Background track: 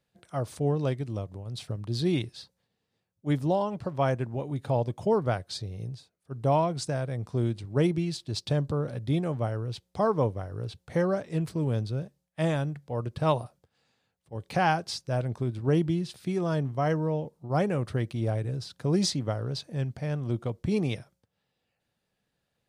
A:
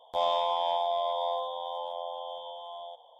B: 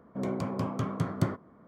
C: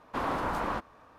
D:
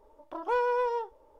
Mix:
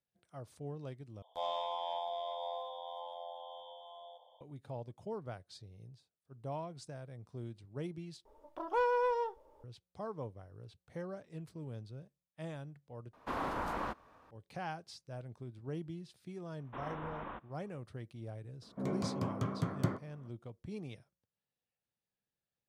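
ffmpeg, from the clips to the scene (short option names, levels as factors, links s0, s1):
-filter_complex "[3:a]asplit=2[s0][s1];[0:a]volume=0.141[s2];[1:a]aecho=1:1:724:0.15[s3];[s1]aresample=8000,aresample=44100[s4];[s2]asplit=4[s5][s6][s7][s8];[s5]atrim=end=1.224[s9];[s3]atrim=end=3.19,asetpts=PTS-STARTPTS,volume=0.316[s10];[s6]atrim=start=4.406:end=8.254[s11];[4:a]atrim=end=1.39,asetpts=PTS-STARTPTS,volume=0.668[s12];[s7]atrim=start=9.636:end=13.134[s13];[s0]atrim=end=1.18,asetpts=PTS-STARTPTS,volume=0.501[s14];[s8]atrim=start=14.306[s15];[s4]atrim=end=1.18,asetpts=PTS-STARTPTS,volume=0.224,afade=t=in:d=0.004:c=hsin,afade=t=out:st=1.176:d=0.004:c=hsin,adelay=16590[s16];[2:a]atrim=end=1.67,asetpts=PTS-STARTPTS,volume=0.562,afade=t=in:d=0.004:c=hsin,afade=t=out:st=1.666:d=0.004:c=hsin,adelay=18620[s17];[s9][s10]acrossfade=d=0.004:c1=hsin:c2=hsin[s18];[s18][s11]acrossfade=d=0.004:c1=hsin:c2=hsin[s19];[s19][s12]acrossfade=d=0.004:c1=hsin:c2=hsin[s20];[s20][s13]acrossfade=d=0.004:c1=hsin:c2=hsin[s21];[s21][s14]acrossfade=d=0.004:c1=hsin:c2=hsin[s22];[s22][s15]acrossfade=d=0.004:c1=hsin:c2=hsin[s23];[s23][s16][s17]amix=inputs=3:normalize=0"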